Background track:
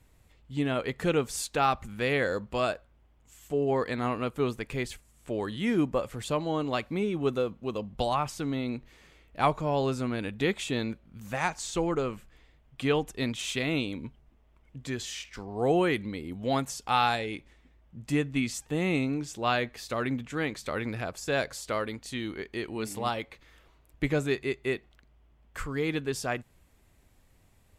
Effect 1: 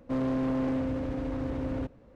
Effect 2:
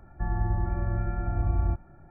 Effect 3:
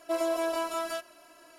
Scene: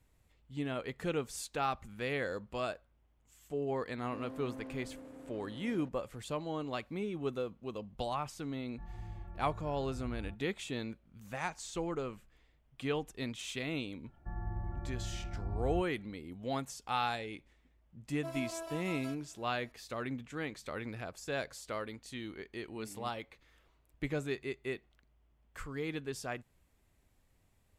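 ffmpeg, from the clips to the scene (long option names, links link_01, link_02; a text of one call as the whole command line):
ffmpeg -i bed.wav -i cue0.wav -i cue1.wav -i cue2.wav -filter_complex "[2:a]asplit=2[link_01][link_02];[0:a]volume=-8.5dB[link_03];[1:a]highpass=210[link_04];[link_01]flanger=delay=18:depth=5:speed=2[link_05];[link_04]atrim=end=2.15,asetpts=PTS-STARTPTS,volume=-16dB,afade=type=in:duration=0.004:curve=hsin,afade=type=out:start_time=2.146:duration=0.004:curve=hsin,adelay=4020[link_06];[link_05]atrim=end=2.1,asetpts=PTS-STARTPTS,volume=-17dB,afade=type=in:duration=0.004:curve=hsin,afade=type=out:start_time=2.096:duration=0.004:curve=hsin,adelay=378378S[link_07];[link_02]atrim=end=2.1,asetpts=PTS-STARTPTS,volume=-12dB,afade=type=in:duration=0.004:curve=hsin,afade=type=out:start_time=2.096:duration=0.004:curve=hsin,adelay=14060[link_08];[3:a]atrim=end=1.58,asetpts=PTS-STARTPTS,volume=-13.5dB,afade=type=in:duration=0.004:curve=hsin,afade=type=out:start_time=1.576:duration=0.004:curve=hsin,adelay=18140[link_09];[link_03][link_06][link_07][link_08][link_09]amix=inputs=5:normalize=0" out.wav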